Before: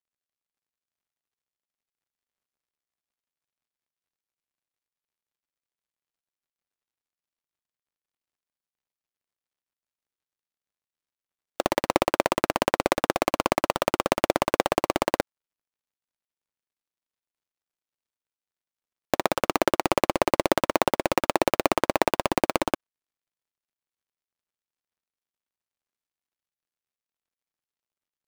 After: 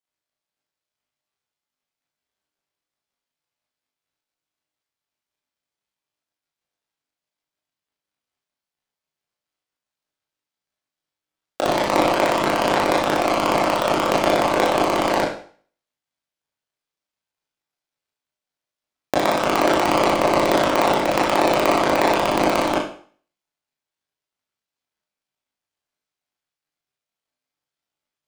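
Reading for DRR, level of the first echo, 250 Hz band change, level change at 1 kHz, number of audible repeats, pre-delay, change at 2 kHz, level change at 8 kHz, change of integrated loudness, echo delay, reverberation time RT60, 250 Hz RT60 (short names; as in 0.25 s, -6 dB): -5.5 dB, none, +6.0 dB, +7.0 dB, none, 20 ms, +6.0 dB, +3.5 dB, +6.5 dB, none, 0.50 s, 0.45 s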